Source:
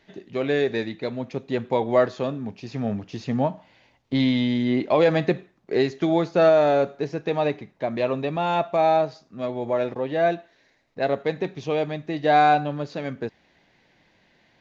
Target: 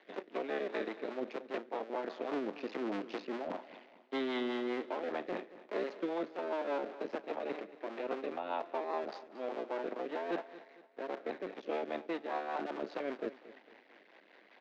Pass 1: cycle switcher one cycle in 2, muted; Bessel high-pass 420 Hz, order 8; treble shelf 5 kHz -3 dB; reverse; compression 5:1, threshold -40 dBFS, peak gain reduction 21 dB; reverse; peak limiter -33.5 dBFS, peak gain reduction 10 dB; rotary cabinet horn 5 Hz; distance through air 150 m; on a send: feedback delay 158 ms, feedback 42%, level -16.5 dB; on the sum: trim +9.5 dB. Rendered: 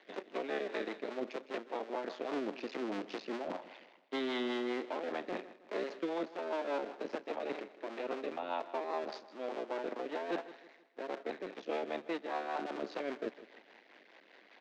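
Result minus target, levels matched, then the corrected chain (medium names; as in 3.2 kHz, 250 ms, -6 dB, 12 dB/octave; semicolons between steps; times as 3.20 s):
echo 69 ms early; 4 kHz band +3.0 dB
cycle switcher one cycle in 2, muted; Bessel high-pass 420 Hz, order 8; treble shelf 5 kHz -13 dB; reverse; compression 5:1, threshold -40 dBFS, peak gain reduction 21 dB; reverse; peak limiter -33.5 dBFS, peak gain reduction 8.5 dB; rotary cabinet horn 5 Hz; distance through air 150 m; on a send: feedback delay 227 ms, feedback 42%, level -16.5 dB; on the sum: trim +9.5 dB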